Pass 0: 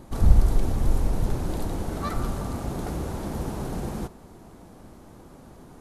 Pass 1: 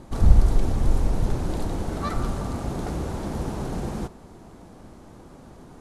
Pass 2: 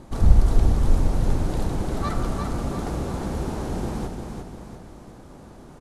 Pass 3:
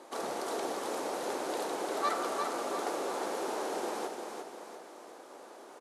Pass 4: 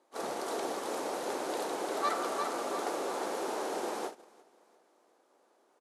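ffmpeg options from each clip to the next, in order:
ffmpeg -i in.wav -af "lowpass=9500,volume=1.5dB" out.wav
ffmpeg -i in.wav -af "aecho=1:1:349|698|1047|1396|1745|2094:0.531|0.244|0.112|0.0517|0.0238|0.0109" out.wav
ffmpeg -i in.wav -af "highpass=frequency=390:width=0.5412,highpass=frequency=390:width=1.3066" out.wav
ffmpeg -i in.wav -af "agate=range=-18dB:threshold=-37dB:ratio=16:detection=peak" out.wav

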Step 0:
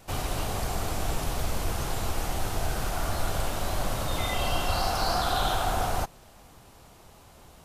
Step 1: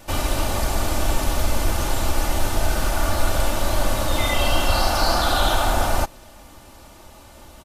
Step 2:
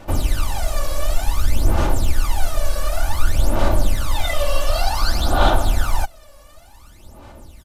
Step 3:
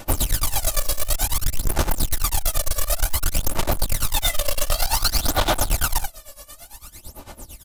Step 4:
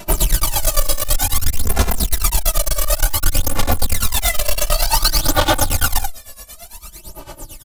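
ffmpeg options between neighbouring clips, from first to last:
ffmpeg -i in.wav -af "aecho=1:1:3.4:0.51,volume=6.5dB" out.wav
ffmpeg -i in.wav -af "aphaser=in_gain=1:out_gain=1:delay=1.8:decay=0.77:speed=0.55:type=sinusoidal,volume=-6.5dB" out.wav
ffmpeg -i in.wav -af "crystalizer=i=3:c=0,volume=17dB,asoftclip=hard,volume=-17dB,tremolo=f=8.9:d=0.87,volume=3.5dB" out.wav
ffmpeg -i in.wav -filter_complex "[0:a]asplit=2[link_01][link_02];[link_02]adelay=2.6,afreqshift=-0.44[link_03];[link_01][link_03]amix=inputs=2:normalize=1,volume=8dB" out.wav

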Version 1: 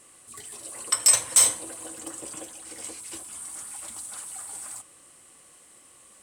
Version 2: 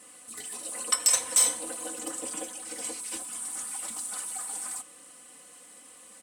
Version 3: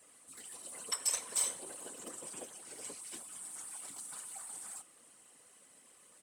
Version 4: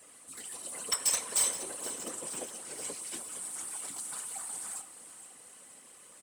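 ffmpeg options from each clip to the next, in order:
ffmpeg -i in.wav -af "highpass=110,aecho=1:1:4:0.93,alimiter=limit=-11dB:level=0:latency=1:release=263" out.wav
ffmpeg -i in.wav -af "afftfilt=real='hypot(re,im)*cos(2*PI*random(0))':imag='hypot(re,im)*sin(2*PI*random(1))':win_size=512:overlap=0.75,volume=-4.5dB" out.wav
ffmpeg -i in.wav -filter_complex "[0:a]asplit=2[link_01][link_02];[link_02]aeval=exprs='(mod(18.8*val(0)+1,2)-1)/18.8':channel_layout=same,volume=-7dB[link_03];[link_01][link_03]amix=inputs=2:normalize=0,aecho=1:1:471|942|1413|1884|2355:0.211|0.112|0.0594|0.0315|0.0167,volume=3dB" out.wav

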